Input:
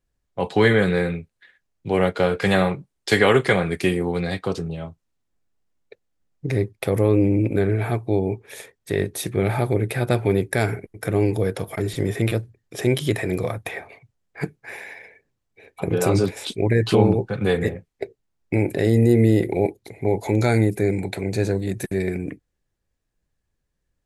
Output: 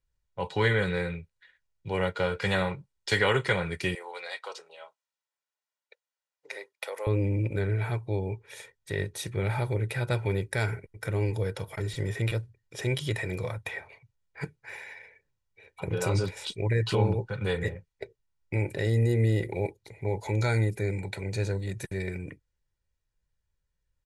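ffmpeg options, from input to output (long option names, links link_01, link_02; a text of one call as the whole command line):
ffmpeg -i in.wav -filter_complex "[0:a]asettb=1/sr,asplit=3[link_01][link_02][link_03];[link_01]atrim=end=3.954[link_04];[link_02]atrim=start=3.95:end=7.07,asetpts=PTS-STARTPTS,afade=type=in:duration=0.004:curve=qsin,afade=type=out:start_time=3.116:duration=0.004:curve=qsin,highpass=frequency=550:width=0.5412,highpass=frequency=550:width=1.3066[link_05];[link_03]atrim=start=7.066[link_06];[link_04][link_05]acrossfade=duration=0.004:curve1=hsin:curve2=qsin[link_07];[link_07][link_06]acrossfade=duration=0.004:curve1=qsin:curve2=hsin,lowpass=8600,equalizer=frequency=390:width_type=o:width=1.3:gain=-8,aecho=1:1:2.1:0.5,volume=-5.5dB" out.wav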